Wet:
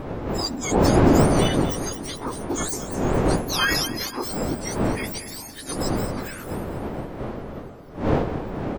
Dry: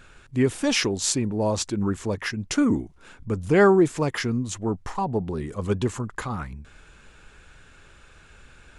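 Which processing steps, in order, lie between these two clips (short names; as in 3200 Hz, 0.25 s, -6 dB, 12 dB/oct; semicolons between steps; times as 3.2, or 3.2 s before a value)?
spectrum mirrored in octaves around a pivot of 1600 Hz; wind noise 640 Hz -25 dBFS; on a send: feedback echo 0.225 s, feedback 46%, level -12.5 dB; on the sum: formant shift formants -5 st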